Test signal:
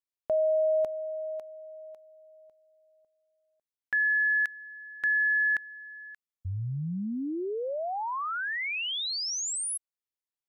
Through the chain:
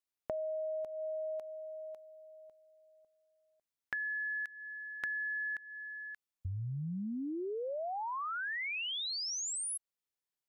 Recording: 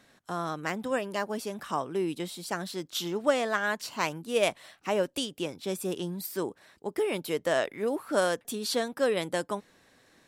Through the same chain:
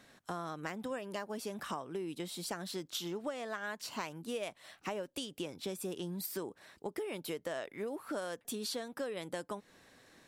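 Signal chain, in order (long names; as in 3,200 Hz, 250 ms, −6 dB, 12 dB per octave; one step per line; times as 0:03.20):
downward compressor 10 to 1, threshold −36 dBFS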